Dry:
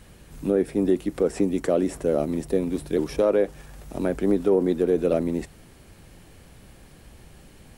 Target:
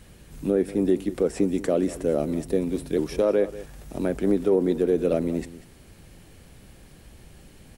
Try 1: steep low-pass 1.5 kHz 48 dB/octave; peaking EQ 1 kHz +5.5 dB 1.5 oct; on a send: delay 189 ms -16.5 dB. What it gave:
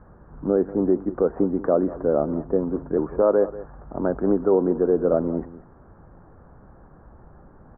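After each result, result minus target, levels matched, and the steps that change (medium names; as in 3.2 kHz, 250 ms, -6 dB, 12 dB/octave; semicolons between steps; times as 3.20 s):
2 kHz band -5.0 dB; 1 kHz band +4.5 dB
remove: steep low-pass 1.5 kHz 48 dB/octave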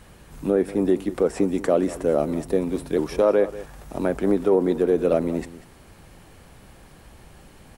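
1 kHz band +5.0 dB
change: peaking EQ 1 kHz -3 dB 1.5 oct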